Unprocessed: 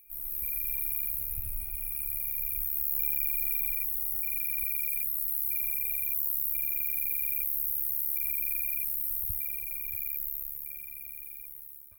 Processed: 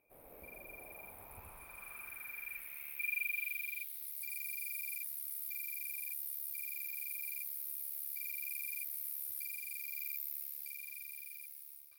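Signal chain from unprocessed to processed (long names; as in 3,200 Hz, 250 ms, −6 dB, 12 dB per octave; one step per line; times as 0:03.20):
band-pass filter sweep 590 Hz → 5,000 Hz, 0:00.68–0:04.26
speech leveller within 5 dB 2 s
level +9.5 dB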